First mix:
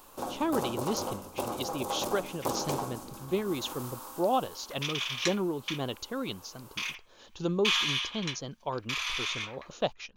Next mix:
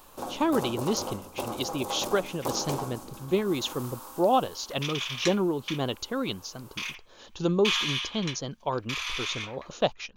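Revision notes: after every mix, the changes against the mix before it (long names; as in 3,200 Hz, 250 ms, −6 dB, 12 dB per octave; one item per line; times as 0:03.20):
speech +4.5 dB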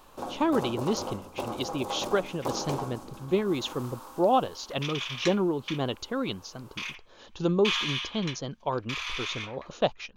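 master: add high-shelf EQ 7,000 Hz −11 dB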